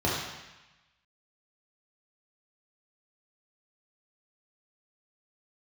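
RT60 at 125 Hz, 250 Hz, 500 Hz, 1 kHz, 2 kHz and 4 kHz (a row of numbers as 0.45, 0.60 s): 1.1, 1.0, 0.95, 1.1, 1.2, 1.1 s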